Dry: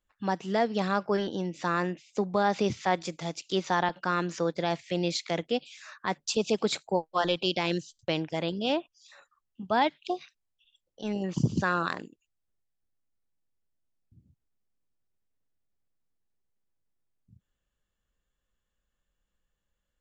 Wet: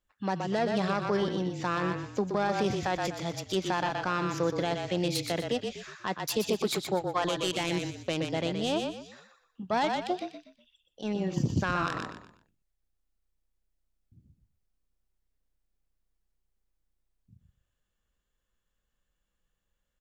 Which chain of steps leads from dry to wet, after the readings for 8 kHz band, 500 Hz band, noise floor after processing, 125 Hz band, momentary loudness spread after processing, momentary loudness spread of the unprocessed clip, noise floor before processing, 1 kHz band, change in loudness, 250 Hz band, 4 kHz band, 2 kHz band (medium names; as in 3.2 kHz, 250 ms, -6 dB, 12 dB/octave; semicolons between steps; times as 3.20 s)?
+1.0 dB, -1.0 dB, -81 dBFS, +0.5 dB, 8 LU, 8 LU, -83 dBFS, -1.5 dB, -1.0 dB, -0.5 dB, -1.0 dB, -1.5 dB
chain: self-modulated delay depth 0.1 ms; frequency-shifting echo 122 ms, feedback 33%, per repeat -31 Hz, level -6.5 dB; peak limiter -17 dBFS, peak gain reduction 6 dB